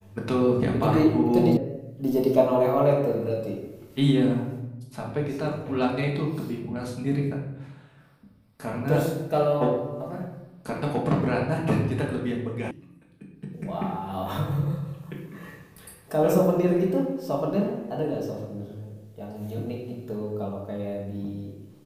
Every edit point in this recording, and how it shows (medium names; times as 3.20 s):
1.57 s: sound stops dead
12.71 s: sound stops dead